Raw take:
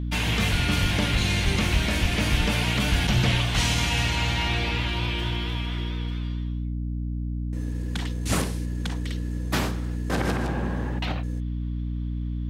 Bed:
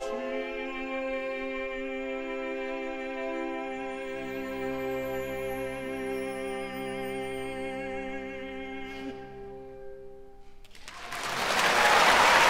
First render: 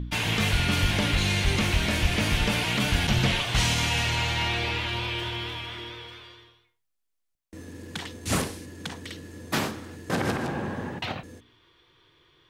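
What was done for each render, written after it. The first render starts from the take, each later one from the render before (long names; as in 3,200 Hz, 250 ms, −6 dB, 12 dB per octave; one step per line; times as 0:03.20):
hum removal 60 Hz, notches 5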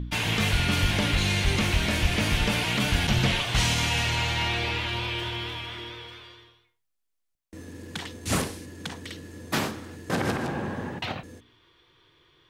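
no processing that can be heard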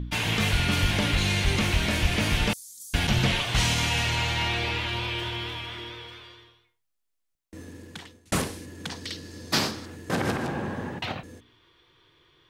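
0:02.53–0:02.94: inverse Chebyshev high-pass filter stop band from 2,900 Hz, stop band 50 dB
0:07.62–0:08.32: fade out
0:08.90–0:09.86: parametric band 4,800 Hz +11.5 dB 0.76 octaves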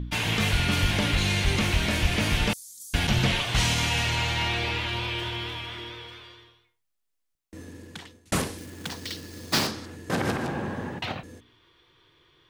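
0:08.58–0:09.67: log-companded quantiser 4 bits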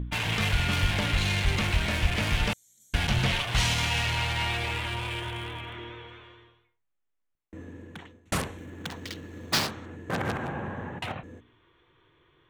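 adaptive Wiener filter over 9 samples
dynamic equaliser 290 Hz, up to −6 dB, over −39 dBFS, Q 0.78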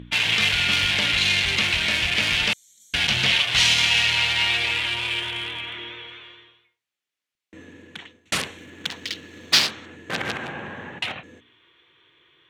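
meter weighting curve D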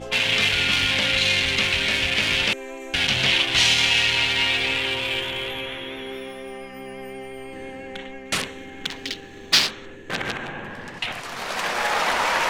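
mix in bed −1.5 dB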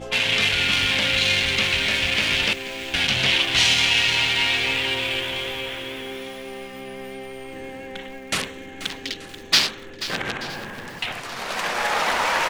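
repeating echo 880 ms, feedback 47%, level −20 dB
feedback echo at a low word length 484 ms, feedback 35%, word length 6 bits, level −12.5 dB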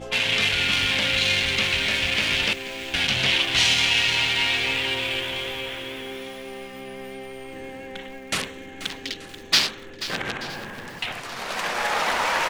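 level −1.5 dB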